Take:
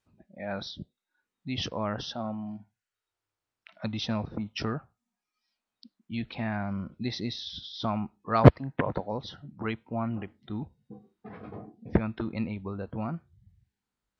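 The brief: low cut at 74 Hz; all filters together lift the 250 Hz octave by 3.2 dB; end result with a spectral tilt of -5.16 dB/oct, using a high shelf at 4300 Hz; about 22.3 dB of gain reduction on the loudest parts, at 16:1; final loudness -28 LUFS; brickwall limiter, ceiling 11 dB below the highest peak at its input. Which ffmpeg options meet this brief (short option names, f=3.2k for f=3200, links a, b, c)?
-af "highpass=74,equalizer=f=250:t=o:g=4,highshelf=f=4.3k:g=-7.5,acompressor=threshold=-30dB:ratio=16,volume=12.5dB,alimiter=limit=-16dB:level=0:latency=1"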